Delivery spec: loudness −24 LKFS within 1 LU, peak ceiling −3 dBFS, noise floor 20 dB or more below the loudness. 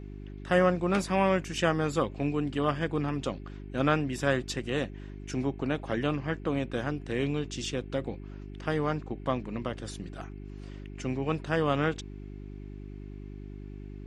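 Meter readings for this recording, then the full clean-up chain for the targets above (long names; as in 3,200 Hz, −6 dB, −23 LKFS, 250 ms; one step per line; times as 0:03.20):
mains hum 50 Hz; hum harmonics up to 400 Hz; level of the hum −40 dBFS; integrated loudness −30.5 LKFS; sample peak −10.5 dBFS; target loudness −24.0 LKFS
→ hum removal 50 Hz, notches 8
level +6.5 dB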